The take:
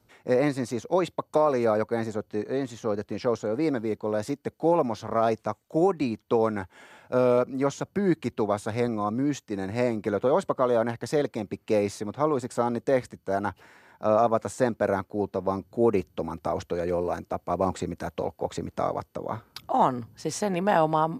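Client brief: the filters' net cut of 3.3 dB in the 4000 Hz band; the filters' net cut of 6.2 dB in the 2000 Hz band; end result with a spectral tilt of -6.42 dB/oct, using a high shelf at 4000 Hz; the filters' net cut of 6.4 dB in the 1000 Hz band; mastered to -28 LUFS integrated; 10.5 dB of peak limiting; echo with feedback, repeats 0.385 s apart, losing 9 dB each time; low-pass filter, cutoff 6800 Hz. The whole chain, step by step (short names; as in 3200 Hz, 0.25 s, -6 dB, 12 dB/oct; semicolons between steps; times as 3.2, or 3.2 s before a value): LPF 6800 Hz; bell 1000 Hz -8 dB; bell 2000 Hz -5 dB; high shelf 4000 Hz +5 dB; bell 4000 Hz -5 dB; limiter -23 dBFS; feedback echo 0.385 s, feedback 35%, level -9 dB; gain +5.5 dB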